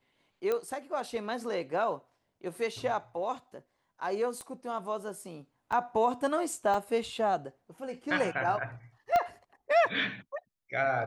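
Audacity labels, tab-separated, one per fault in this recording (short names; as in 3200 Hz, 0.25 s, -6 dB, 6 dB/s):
0.520000	0.520000	pop -18 dBFS
4.410000	4.410000	pop -30 dBFS
5.720000	5.730000	gap 5.5 ms
6.740000	6.740000	gap 3.5 ms
9.160000	9.160000	pop -15 dBFS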